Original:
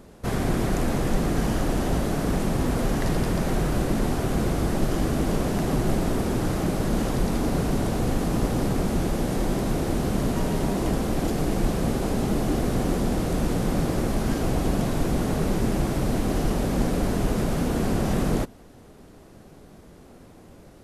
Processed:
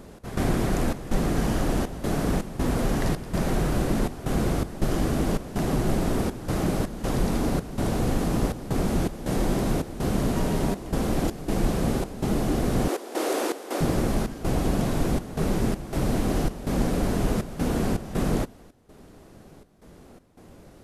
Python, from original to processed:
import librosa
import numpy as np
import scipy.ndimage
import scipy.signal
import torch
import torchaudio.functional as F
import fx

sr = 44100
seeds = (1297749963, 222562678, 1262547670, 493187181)

y = fx.steep_highpass(x, sr, hz=320.0, slope=36, at=(12.88, 13.81))
y = fx.rider(y, sr, range_db=10, speed_s=0.5)
y = fx.step_gate(y, sr, bpm=81, pattern='x.xxx.xxxx.x', floor_db=-12.0, edge_ms=4.5)